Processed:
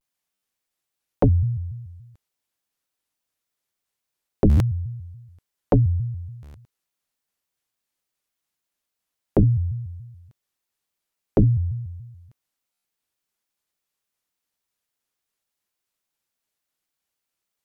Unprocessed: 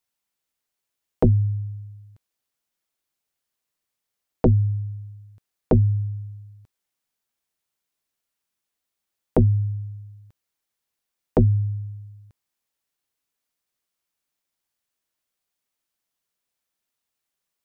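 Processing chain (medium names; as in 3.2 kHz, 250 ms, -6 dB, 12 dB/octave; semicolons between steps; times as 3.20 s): buffer glitch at 0.33/4.49/6.43/12.73 s, samples 512, times 8; vibrato with a chosen wave square 3.5 Hz, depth 250 cents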